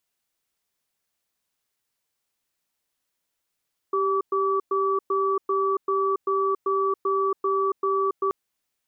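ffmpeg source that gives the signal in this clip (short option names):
-f lavfi -i "aevalsrc='0.0708*(sin(2*PI*391*t)+sin(2*PI*1150*t))*clip(min(mod(t,0.39),0.28-mod(t,0.39))/0.005,0,1)':d=4.38:s=44100"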